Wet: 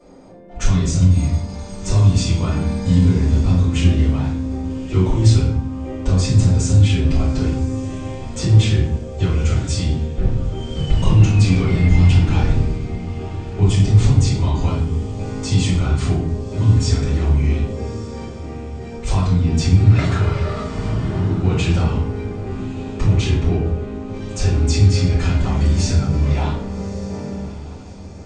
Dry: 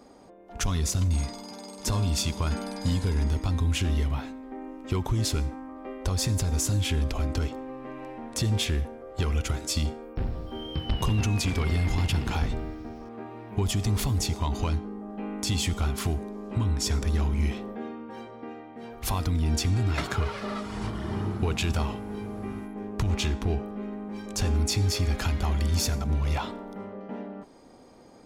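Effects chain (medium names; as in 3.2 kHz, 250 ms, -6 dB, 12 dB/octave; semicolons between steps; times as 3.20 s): brick-wall FIR low-pass 9 kHz; peaking EQ 180 Hz +7.5 dB 1.8 oct; on a send: echo that smears into a reverb 1193 ms, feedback 45%, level -15.5 dB; on the sum: simulated room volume 96 m³, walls mixed, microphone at 4.5 m; trim -10 dB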